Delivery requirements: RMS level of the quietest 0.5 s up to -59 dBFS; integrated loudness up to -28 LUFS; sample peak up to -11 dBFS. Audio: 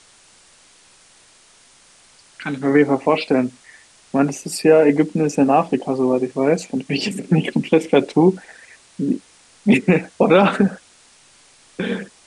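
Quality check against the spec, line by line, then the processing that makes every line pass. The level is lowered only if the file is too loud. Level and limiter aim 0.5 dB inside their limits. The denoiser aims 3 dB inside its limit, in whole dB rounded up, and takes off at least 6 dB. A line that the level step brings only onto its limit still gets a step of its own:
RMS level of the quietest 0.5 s -51 dBFS: fail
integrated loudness -18.0 LUFS: fail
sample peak -3.5 dBFS: fail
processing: gain -10.5 dB

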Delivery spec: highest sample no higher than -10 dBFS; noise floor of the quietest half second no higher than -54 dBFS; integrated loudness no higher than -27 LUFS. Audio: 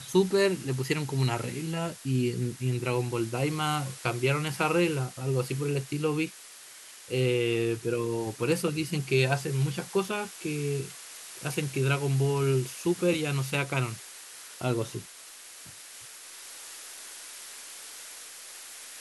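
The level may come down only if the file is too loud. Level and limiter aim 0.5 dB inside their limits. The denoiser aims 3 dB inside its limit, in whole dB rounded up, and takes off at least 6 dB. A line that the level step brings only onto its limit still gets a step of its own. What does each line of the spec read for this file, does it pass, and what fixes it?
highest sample -12.0 dBFS: OK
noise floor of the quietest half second -48 dBFS: fail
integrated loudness -29.0 LUFS: OK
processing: denoiser 9 dB, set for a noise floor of -48 dBFS

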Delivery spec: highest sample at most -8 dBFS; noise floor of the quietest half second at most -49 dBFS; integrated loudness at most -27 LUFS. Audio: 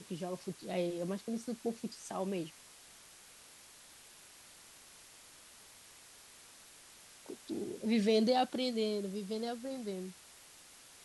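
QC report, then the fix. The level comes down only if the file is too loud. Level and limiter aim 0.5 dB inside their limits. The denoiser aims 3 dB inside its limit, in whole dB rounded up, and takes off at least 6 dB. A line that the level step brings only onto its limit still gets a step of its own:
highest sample -18.5 dBFS: OK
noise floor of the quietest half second -58 dBFS: OK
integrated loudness -36.5 LUFS: OK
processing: none

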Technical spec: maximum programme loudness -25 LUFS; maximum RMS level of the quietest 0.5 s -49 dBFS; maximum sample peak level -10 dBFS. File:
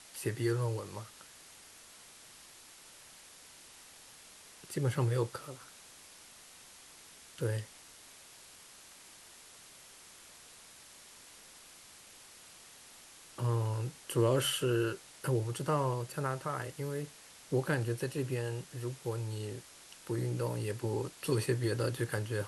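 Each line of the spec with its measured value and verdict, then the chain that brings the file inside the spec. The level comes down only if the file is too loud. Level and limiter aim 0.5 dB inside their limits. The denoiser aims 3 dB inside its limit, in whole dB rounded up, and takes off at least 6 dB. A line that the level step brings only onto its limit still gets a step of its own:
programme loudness -35.0 LUFS: OK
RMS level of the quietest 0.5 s -55 dBFS: OK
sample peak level -17.0 dBFS: OK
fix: none

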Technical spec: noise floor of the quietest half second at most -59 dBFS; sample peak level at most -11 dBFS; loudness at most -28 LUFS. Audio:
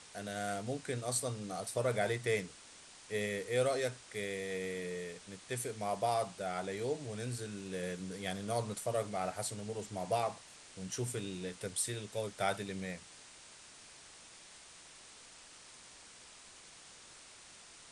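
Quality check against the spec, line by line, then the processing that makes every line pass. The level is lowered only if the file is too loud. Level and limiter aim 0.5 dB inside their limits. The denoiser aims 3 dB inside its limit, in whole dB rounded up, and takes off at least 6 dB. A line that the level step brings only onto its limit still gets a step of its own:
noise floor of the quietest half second -56 dBFS: fail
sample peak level -19.5 dBFS: OK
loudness -37.5 LUFS: OK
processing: denoiser 6 dB, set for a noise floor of -56 dBFS

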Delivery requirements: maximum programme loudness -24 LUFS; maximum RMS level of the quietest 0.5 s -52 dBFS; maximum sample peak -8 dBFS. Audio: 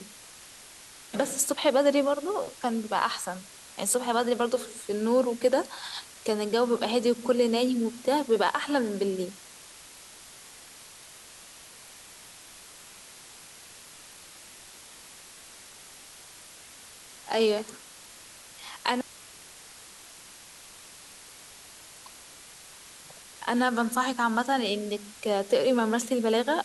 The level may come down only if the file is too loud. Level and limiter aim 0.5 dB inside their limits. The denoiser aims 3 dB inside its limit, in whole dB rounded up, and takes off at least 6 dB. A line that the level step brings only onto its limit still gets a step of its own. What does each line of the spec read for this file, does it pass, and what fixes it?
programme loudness -27.0 LUFS: OK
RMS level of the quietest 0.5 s -49 dBFS: fail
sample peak -9.5 dBFS: OK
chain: denoiser 6 dB, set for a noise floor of -49 dBFS

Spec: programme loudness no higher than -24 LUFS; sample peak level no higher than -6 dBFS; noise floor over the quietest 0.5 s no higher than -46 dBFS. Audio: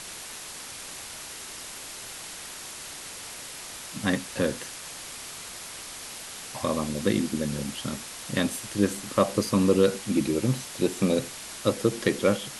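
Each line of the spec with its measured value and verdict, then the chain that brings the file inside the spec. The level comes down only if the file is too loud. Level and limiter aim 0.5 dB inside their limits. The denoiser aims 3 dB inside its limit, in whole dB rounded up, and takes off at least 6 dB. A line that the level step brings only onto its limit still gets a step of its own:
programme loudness -29.0 LUFS: OK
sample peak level -8.0 dBFS: OK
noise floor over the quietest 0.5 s -40 dBFS: fail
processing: denoiser 9 dB, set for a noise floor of -40 dBFS

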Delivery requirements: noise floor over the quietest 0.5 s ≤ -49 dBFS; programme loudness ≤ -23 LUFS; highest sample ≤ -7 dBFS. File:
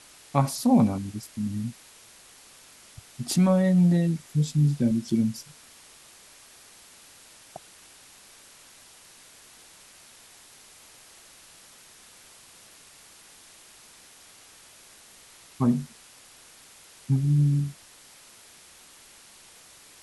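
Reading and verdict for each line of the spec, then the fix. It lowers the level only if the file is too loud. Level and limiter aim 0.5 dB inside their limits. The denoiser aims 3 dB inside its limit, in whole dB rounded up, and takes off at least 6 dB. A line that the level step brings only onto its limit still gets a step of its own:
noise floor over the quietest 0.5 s -52 dBFS: OK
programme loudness -24.5 LUFS: OK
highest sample -7.5 dBFS: OK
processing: none

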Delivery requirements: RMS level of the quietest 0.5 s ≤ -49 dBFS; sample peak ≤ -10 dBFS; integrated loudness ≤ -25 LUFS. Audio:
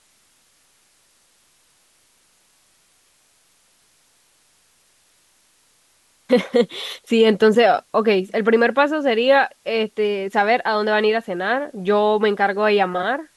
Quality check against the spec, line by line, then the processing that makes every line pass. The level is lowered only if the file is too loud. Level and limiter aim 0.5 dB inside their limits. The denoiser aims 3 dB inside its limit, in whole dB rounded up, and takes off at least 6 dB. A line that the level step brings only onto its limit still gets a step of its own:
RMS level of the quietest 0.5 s -60 dBFS: OK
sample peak -5.5 dBFS: fail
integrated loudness -18.5 LUFS: fail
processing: gain -7 dB

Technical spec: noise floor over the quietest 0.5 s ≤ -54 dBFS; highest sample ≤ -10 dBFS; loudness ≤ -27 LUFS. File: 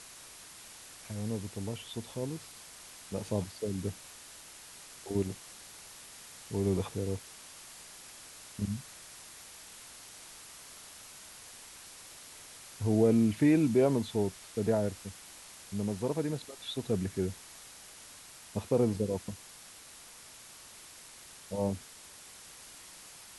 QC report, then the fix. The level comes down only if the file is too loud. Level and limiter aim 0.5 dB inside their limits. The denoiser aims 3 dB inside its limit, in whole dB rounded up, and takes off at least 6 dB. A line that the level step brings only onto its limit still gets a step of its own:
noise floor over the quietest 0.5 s -52 dBFS: fail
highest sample -14.0 dBFS: OK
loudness -32.5 LUFS: OK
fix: denoiser 6 dB, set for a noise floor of -52 dBFS

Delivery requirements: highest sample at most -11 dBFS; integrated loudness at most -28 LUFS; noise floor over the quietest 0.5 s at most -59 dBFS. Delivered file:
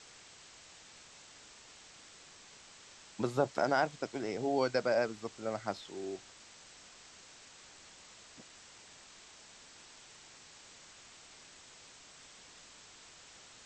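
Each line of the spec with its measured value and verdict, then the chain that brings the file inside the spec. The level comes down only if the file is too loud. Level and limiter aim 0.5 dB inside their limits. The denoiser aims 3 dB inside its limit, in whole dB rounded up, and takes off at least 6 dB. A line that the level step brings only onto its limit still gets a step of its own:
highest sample -16.0 dBFS: OK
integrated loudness -34.5 LUFS: OK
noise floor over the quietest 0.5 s -56 dBFS: fail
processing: denoiser 6 dB, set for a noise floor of -56 dBFS

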